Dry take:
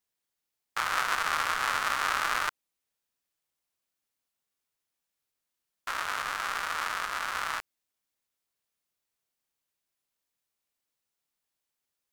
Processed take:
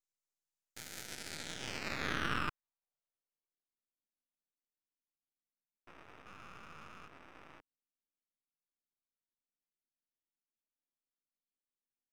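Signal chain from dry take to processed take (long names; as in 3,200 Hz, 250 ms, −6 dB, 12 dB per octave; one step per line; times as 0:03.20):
band-pass filter sweep 6,900 Hz → 250 Hz, 0:00.99–0:03.81
0:06.26–0:07.08: mid-hump overdrive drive 15 dB, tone 3,900 Hz, clips at −38 dBFS
half-wave rectification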